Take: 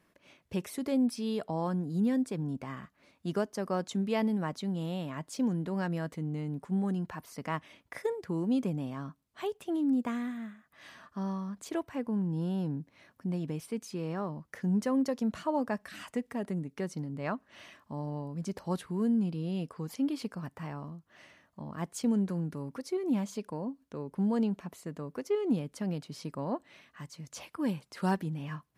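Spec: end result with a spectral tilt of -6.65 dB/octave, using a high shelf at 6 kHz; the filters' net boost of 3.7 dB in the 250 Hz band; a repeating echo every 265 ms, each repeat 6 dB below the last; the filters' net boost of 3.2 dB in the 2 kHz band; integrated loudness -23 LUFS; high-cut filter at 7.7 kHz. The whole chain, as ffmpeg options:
-af "lowpass=7700,equalizer=f=250:t=o:g=4.5,equalizer=f=2000:t=o:g=3.5,highshelf=f=6000:g=4.5,aecho=1:1:265|530|795|1060|1325|1590:0.501|0.251|0.125|0.0626|0.0313|0.0157,volume=2.24"

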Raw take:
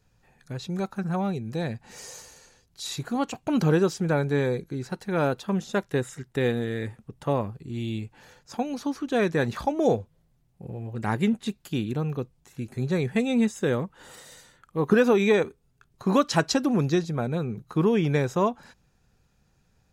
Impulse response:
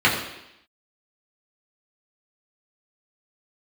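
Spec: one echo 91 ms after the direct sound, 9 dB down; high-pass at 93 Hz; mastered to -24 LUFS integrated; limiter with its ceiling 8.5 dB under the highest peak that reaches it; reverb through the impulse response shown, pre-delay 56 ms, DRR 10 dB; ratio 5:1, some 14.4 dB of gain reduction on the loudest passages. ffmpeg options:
-filter_complex "[0:a]highpass=93,acompressor=threshold=0.0251:ratio=5,alimiter=level_in=1.41:limit=0.0631:level=0:latency=1,volume=0.708,aecho=1:1:91:0.355,asplit=2[s0][s1];[1:a]atrim=start_sample=2205,adelay=56[s2];[s1][s2]afir=irnorm=-1:irlink=0,volume=0.0282[s3];[s0][s3]amix=inputs=2:normalize=0,volume=4.73"

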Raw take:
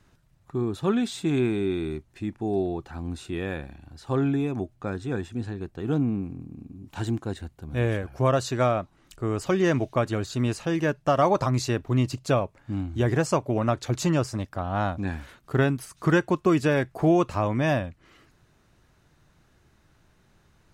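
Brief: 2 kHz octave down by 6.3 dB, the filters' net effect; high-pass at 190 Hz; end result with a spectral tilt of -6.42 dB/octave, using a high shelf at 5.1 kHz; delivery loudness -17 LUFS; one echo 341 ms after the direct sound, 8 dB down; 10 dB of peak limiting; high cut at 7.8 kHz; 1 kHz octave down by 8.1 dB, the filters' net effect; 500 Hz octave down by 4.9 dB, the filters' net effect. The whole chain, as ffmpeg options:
-af "highpass=190,lowpass=7800,equalizer=f=500:t=o:g=-4,equalizer=f=1000:t=o:g=-8.5,equalizer=f=2000:t=o:g=-3.5,highshelf=f=5100:g=-9,alimiter=limit=0.0794:level=0:latency=1,aecho=1:1:341:0.398,volume=6.68"

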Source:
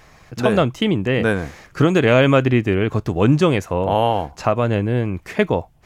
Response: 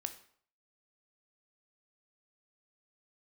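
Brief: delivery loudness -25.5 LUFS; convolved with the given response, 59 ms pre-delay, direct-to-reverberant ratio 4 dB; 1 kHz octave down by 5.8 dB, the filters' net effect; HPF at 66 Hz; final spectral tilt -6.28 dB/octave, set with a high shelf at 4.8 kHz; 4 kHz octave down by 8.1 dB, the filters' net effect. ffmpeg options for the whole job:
-filter_complex "[0:a]highpass=66,equalizer=f=1000:t=o:g=-7.5,equalizer=f=4000:t=o:g=-8.5,highshelf=f=4800:g=-6.5,asplit=2[s0][s1];[1:a]atrim=start_sample=2205,adelay=59[s2];[s1][s2]afir=irnorm=-1:irlink=0,volume=0.75[s3];[s0][s3]amix=inputs=2:normalize=0,volume=0.447"

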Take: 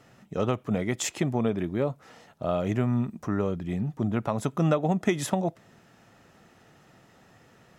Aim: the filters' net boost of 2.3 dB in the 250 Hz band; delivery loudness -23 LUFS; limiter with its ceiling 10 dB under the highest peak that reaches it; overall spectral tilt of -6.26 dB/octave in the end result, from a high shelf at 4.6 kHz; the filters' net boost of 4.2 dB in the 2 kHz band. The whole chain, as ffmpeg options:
-af "equalizer=f=250:t=o:g=3,equalizer=f=2000:t=o:g=6.5,highshelf=f=4600:g=-9,volume=2.37,alimiter=limit=0.266:level=0:latency=1"

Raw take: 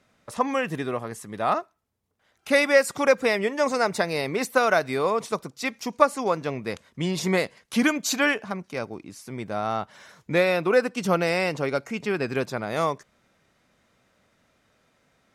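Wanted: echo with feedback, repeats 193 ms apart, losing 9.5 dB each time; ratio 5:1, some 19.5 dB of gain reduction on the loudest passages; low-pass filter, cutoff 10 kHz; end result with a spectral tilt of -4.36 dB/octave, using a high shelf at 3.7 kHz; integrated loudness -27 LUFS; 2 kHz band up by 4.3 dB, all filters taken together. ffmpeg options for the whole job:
-af "lowpass=10000,equalizer=f=2000:t=o:g=6,highshelf=f=3700:g=-3,acompressor=threshold=0.0224:ratio=5,aecho=1:1:193|386|579|772:0.335|0.111|0.0365|0.012,volume=2.82"

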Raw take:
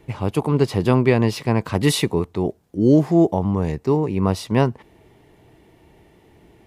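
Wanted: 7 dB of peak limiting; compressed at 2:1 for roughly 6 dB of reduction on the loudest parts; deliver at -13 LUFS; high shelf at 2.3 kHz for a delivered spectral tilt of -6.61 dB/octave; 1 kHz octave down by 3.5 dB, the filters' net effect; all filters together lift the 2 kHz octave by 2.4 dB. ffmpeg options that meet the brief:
-af "equalizer=f=1000:t=o:g=-5,equalizer=f=2000:t=o:g=6,highshelf=f=2300:g=-4,acompressor=threshold=0.0891:ratio=2,volume=4.47,alimiter=limit=0.891:level=0:latency=1"

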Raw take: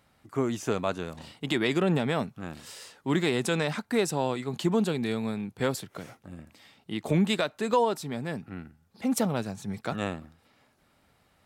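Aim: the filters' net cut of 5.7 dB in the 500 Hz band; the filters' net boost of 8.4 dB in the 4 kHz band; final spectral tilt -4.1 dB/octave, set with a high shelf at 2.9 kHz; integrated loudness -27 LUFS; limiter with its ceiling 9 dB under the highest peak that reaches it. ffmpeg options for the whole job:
-af "equalizer=f=500:t=o:g=-7.5,highshelf=f=2900:g=3.5,equalizer=f=4000:t=o:g=7.5,volume=1.58,alimiter=limit=0.224:level=0:latency=1"

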